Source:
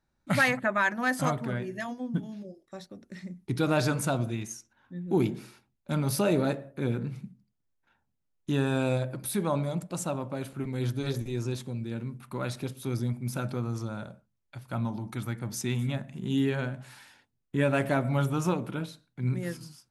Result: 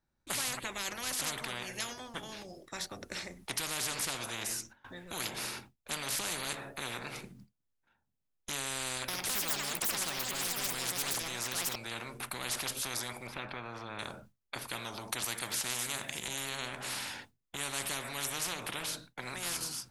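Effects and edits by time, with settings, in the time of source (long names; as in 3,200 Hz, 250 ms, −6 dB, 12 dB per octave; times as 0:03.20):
0:08.87–0:12.65: delay with pitch and tempo change per echo 212 ms, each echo +6 semitones, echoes 2
0:13.27–0:13.99: high-frequency loss of the air 490 metres
0:15.24–0:16.28: tilt shelving filter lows −8.5 dB, about 1,300 Hz
whole clip: noise gate with hold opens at −54 dBFS; every bin compressed towards the loudest bin 10 to 1; level −5 dB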